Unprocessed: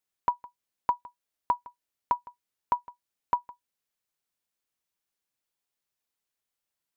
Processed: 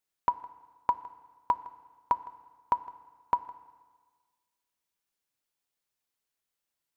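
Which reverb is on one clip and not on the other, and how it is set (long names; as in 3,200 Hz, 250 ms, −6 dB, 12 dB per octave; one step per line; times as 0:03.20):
feedback delay network reverb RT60 1.5 s, low-frequency decay 1×, high-frequency decay 0.95×, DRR 15 dB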